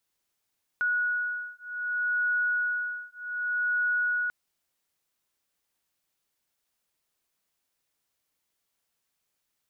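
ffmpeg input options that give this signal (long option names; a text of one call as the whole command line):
ffmpeg -f lavfi -i "aevalsrc='0.0355*(sin(2*PI*1460*t)+sin(2*PI*1460.65*t))':duration=3.49:sample_rate=44100" out.wav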